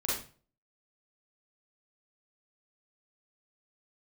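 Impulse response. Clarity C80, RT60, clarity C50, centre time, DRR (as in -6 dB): 8.0 dB, 0.40 s, 0.5 dB, 53 ms, -7.0 dB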